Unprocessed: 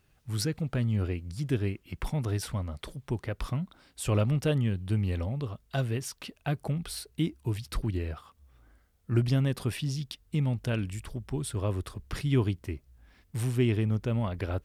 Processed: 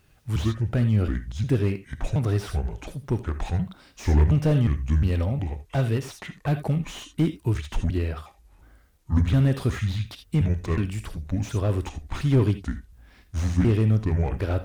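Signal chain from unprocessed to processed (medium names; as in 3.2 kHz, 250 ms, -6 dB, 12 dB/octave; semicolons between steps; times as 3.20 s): pitch shift switched off and on -6 st, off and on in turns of 359 ms; gated-style reverb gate 100 ms rising, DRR 12 dB; slew-rate limiter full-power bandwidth 23 Hz; trim +6.5 dB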